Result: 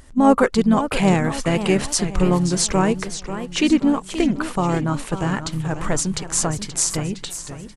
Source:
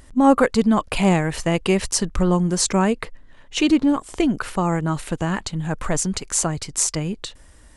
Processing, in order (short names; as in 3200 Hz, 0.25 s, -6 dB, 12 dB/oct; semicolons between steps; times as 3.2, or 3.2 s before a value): harmoniser -4 st -11 dB; warbling echo 0.534 s, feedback 46%, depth 183 cents, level -11 dB